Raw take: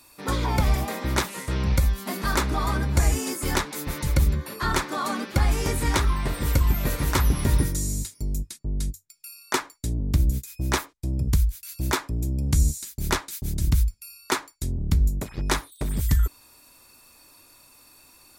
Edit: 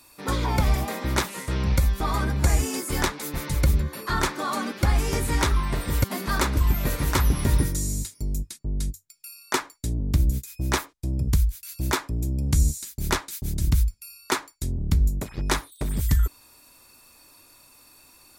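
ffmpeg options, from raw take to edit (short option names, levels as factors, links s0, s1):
-filter_complex "[0:a]asplit=4[s0][s1][s2][s3];[s0]atrim=end=2.002[s4];[s1]atrim=start=2.528:end=6.572[s5];[s2]atrim=start=1.998:end=2.532[s6];[s3]atrim=start=6.568[s7];[s4][s5]acrossfade=d=0.004:c1=hsin:c2=hsin[s8];[s8][s6]acrossfade=d=0.004:c1=hsin:c2=hsin[s9];[s9][s7]acrossfade=d=0.004:c1=hsin:c2=hsin"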